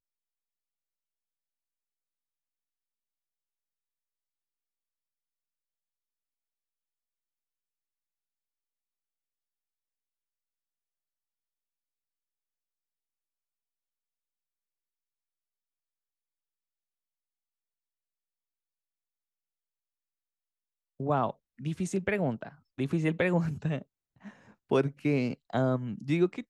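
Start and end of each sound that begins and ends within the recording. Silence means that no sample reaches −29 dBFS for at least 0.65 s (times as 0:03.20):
0:21.00–0:23.78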